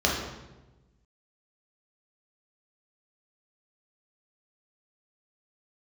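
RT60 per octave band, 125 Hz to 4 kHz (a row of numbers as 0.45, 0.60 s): 1.6, 1.4, 1.2, 1.0, 0.90, 0.80 s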